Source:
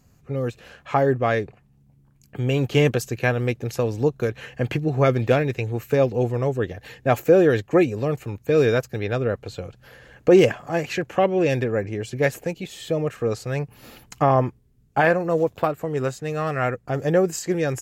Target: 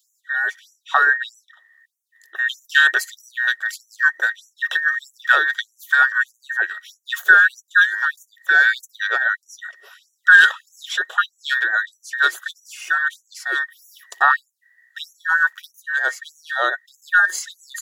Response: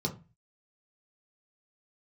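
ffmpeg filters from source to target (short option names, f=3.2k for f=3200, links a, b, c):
-af "afftfilt=real='real(if(between(b,1,1012),(2*floor((b-1)/92)+1)*92-b,b),0)':imag='imag(if(between(b,1,1012),(2*floor((b-1)/92)+1)*92-b,b),0)*if(between(b,1,1012),-1,1)':win_size=2048:overlap=0.75,afftfilt=real='re*gte(b*sr/1024,310*pow(5800/310,0.5+0.5*sin(2*PI*1.6*pts/sr)))':imag='im*gte(b*sr/1024,310*pow(5800/310,0.5+0.5*sin(2*PI*1.6*pts/sr)))':win_size=1024:overlap=0.75,volume=3.5dB"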